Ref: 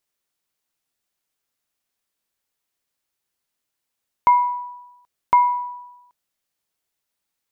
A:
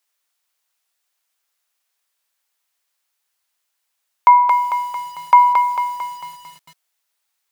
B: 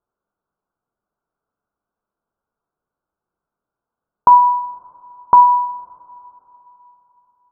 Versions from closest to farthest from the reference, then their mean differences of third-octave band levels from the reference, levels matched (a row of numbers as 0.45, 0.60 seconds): B, A; 2.0, 5.5 decibels